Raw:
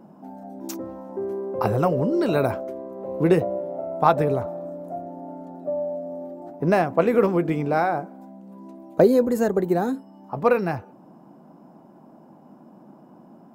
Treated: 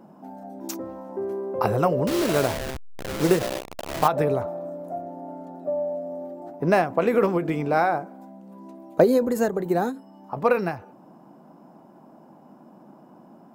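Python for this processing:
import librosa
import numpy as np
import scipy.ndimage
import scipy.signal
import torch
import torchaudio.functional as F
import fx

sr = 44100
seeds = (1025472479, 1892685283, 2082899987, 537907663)

y = fx.delta_hold(x, sr, step_db=-23.5, at=(2.07, 4.08))
y = fx.low_shelf(y, sr, hz=450.0, db=-4.5)
y = fx.end_taper(y, sr, db_per_s=160.0)
y = y * 10.0 ** (2.0 / 20.0)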